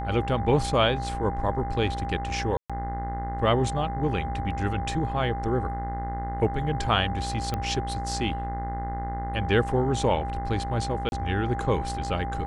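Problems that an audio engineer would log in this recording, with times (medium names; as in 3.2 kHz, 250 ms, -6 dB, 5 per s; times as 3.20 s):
buzz 60 Hz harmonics 35 -33 dBFS
whine 800 Hz -32 dBFS
2.57–2.70 s: dropout 126 ms
7.54 s: pop -15 dBFS
11.09–11.12 s: dropout 31 ms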